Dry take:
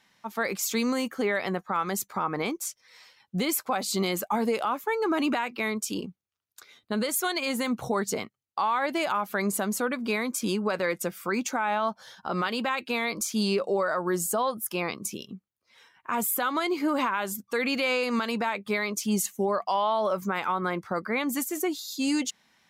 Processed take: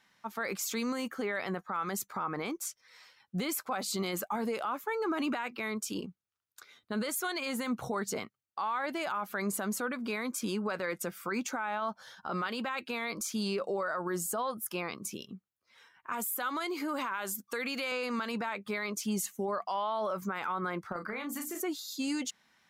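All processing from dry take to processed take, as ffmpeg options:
-filter_complex "[0:a]asettb=1/sr,asplit=3[s0][s1][s2];[s0]atrim=end=16.124[s3];[s1]atrim=start=16.12:end=17.92,asetpts=PTS-STARTPTS,afade=t=in:d=0.004:c=qsin,afade=t=out:st=1.796:d=0.004:c=qsin,highpass=180,highshelf=f=4500:g=7,acompressor=threshold=0.0447:ratio=5:attack=3.2:release=140:knee=1:detection=peak[s4];[s2]atrim=start=17.916[s5];[s3][s4]acrossfade=d=0.004:c1=hsin:c2=qsin[s6];[s6][s5]acrossfade=d=0.004:c1=qsin:c2=hsin,asettb=1/sr,asplit=3[s7][s8][s9];[s7]atrim=end=20.924[s10];[s8]atrim=start=20.92:end=21.61,asetpts=PTS-STARTPTS,afade=t=in:d=0.004:c=qsin,afade=t=out:st=0.686:d=0.004:c=qsin,bandreject=f=60:t=h:w=6,bandreject=f=120:t=h:w=6,bandreject=f=180:t=h:w=6,bandreject=f=240:t=h:w=6,bandreject=f=300:t=h:w=6,bandreject=f=360:t=h:w=6,acompressor=threshold=0.0316:ratio=10:attack=3.2:release=140:knee=1:detection=peak,asplit=2[s11][s12];[s12]adelay=34,volume=0.501[s13];[s11][s13]amix=inputs=2:normalize=0,atrim=end_sample=30429[s14];[s9]atrim=start=21.606[s15];[s10][s14]acrossfade=d=0.004:c1=hsin:c2=qsin[s16];[s16][s15]acrossfade=d=0.004:c1=qsin:c2=hsin,equalizer=f=1400:t=o:w=0.72:g=4.5,alimiter=limit=0.0944:level=0:latency=1:release=21,volume=0.596"

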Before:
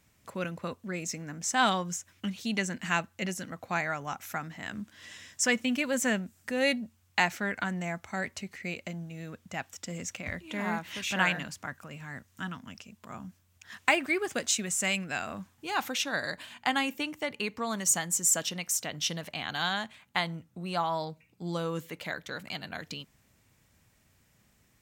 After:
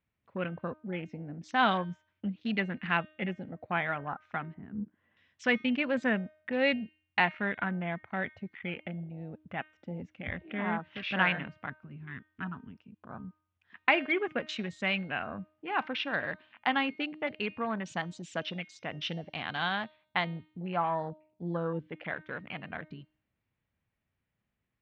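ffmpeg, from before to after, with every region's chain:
-filter_complex "[0:a]asettb=1/sr,asplit=3[s0][s1][s2];[s0]atrim=end=4.544[s3];[s1]atrim=start=4.54:end=5.17,asetpts=PTS-STARTPTS,afade=t=in:d=0.004:c=qsin,afade=t=out:st=0.626:d=0.004:c=qsin,lowpass=1300,equalizer=f=220:t=o:w=0.43:g=3.5,bandreject=f=60:t=h:w=6,bandreject=f=120:t=h:w=6,bandreject=f=180:t=h:w=6,bandreject=f=240:t=h:w=6,bandreject=f=300:t=h:w=6,bandreject=f=360:t=h:w=6,bandreject=f=420:t=h:w=6[s4];[s2]atrim=start=5.166[s5];[s3][s4]acrossfade=d=0.004:c1=hsin:c2=qsin[s6];[s6][s5]acrossfade=d=0.004:c1=qsin:c2=hsin,afwtdn=0.0112,lowpass=f=3300:w=0.5412,lowpass=f=3300:w=1.3066,bandreject=f=309.3:t=h:w=4,bandreject=f=618.6:t=h:w=4,bandreject=f=927.9:t=h:w=4,bandreject=f=1237.2:t=h:w=4,bandreject=f=1546.5:t=h:w=4,bandreject=f=1855.8:t=h:w=4,bandreject=f=2165.1:t=h:w=4,bandreject=f=2474.4:t=h:w=4,bandreject=f=2783.7:t=h:w=4,bandreject=f=3093:t=h:w=4,bandreject=f=3402.3:t=h:w=4,bandreject=f=3711.6:t=h:w=4,bandreject=f=4020.9:t=h:w=4,bandreject=f=4330.2:t=h:w=4,bandreject=f=4639.5:t=h:w=4,bandreject=f=4948.8:t=h:w=4,bandreject=f=5258.1:t=h:w=4,bandreject=f=5567.4:t=h:w=4,bandreject=f=5876.7:t=h:w=4,bandreject=f=6186:t=h:w=4"

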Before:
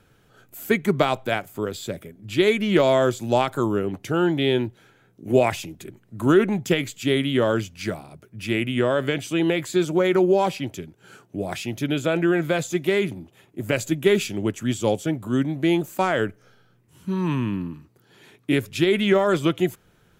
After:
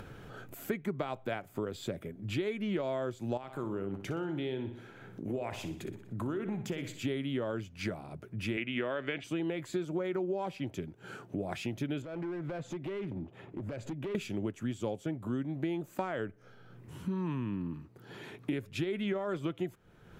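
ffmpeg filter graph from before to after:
-filter_complex "[0:a]asettb=1/sr,asplit=3[s0][s1][s2];[s0]atrim=end=3.374[s3];[s1]atrim=start=3.37:end=7.04,asetpts=PTS-STARTPTS,afade=t=in:d=0.004:c=qsin,afade=t=out:st=3.666:d=0.004:c=qsin,acompressor=threshold=0.0178:ratio=2:attack=3.2:release=140:knee=1:detection=peak,aecho=1:1:61|122|183|244|305:0.282|0.132|0.0623|0.0293|0.0138,atrim=end_sample=161847[s4];[s2]atrim=start=7.036[s5];[s3][s4]acrossfade=d=0.004:c1=hsin:c2=qsin[s6];[s6][s5]acrossfade=d=0.004:c1=qsin:c2=hsin,asettb=1/sr,asplit=3[s7][s8][s9];[s7]atrim=end=8.574[s10];[s8]atrim=start=8.57:end=9.24,asetpts=PTS-STARTPTS,afade=t=in:d=0.004:c=qsin,afade=t=out:st=0.666:d=0.004:c=qsin,highpass=160,lowpass=5900,equalizer=f=2300:t=o:w=1.4:g=9.5[s11];[s9]atrim=start=9.236[s12];[s10][s11]acrossfade=d=0.004:c1=hsin:c2=qsin[s13];[s13][s12]acrossfade=d=0.004:c1=qsin:c2=hsin,asettb=1/sr,asplit=3[s14][s15][s16];[s14]atrim=end=12.024[s17];[s15]atrim=start=12.02:end=14.15,asetpts=PTS-STARTPTS,afade=t=in:d=0.004:c=qsin,afade=t=out:st=2.126:d=0.004:c=qsin,aemphasis=mode=reproduction:type=75fm,acompressor=threshold=0.02:ratio=5:attack=3.2:release=140:knee=1:detection=peak,asoftclip=type=hard:threshold=0.0224[s18];[s16]atrim=start=14.146[s19];[s17][s18]acrossfade=d=0.004:c1=hsin:c2=qsin[s20];[s20][s19]acrossfade=d=0.004:c1=qsin:c2=hsin,acompressor=mode=upward:threshold=0.0141:ratio=2.5,highshelf=f=3400:g=-11.5,acompressor=threshold=0.0251:ratio=6"

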